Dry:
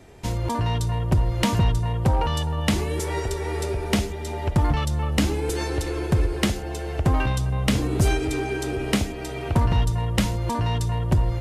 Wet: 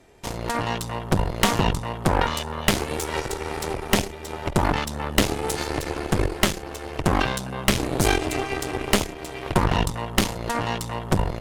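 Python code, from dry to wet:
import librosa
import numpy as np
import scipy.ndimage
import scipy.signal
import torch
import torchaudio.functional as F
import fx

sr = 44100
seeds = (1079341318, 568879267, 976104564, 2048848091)

y = fx.peak_eq(x, sr, hz=88.0, db=-7.0, octaves=2.4)
y = fx.cheby_harmonics(y, sr, harmonics=(3, 4, 7), levels_db=(-16, -10, -33), full_scale_db=-11.0)
y = y * 10.0 ** (5.0 / 20.0)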